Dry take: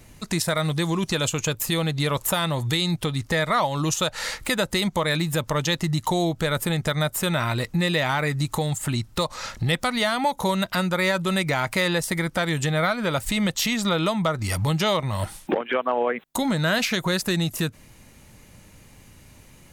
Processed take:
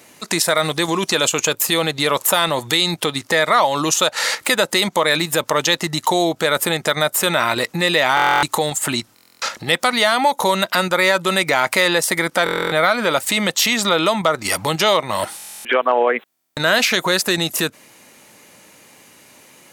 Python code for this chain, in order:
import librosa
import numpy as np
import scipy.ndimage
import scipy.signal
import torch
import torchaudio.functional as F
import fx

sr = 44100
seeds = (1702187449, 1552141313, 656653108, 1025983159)

p1 = scipy.signal.sosfilt(scipy.signal.butter(2, 340.0, 'highpass', fs=sr, output='sos'), x)
p2 = fx.level_steps(p1, sr, step_db=17)
p3 = p1 + F.gain(torch.from_numpy(p2), 0.5).numpy()
p4 = fx.buffer_glitch(p3, sr, at_s=(8.15, 9.14, 12.44, 15.37, 16.29), block=1024, repeats=11)
y = F.gain(torch.from_numpy(p4), 5.5).numpy()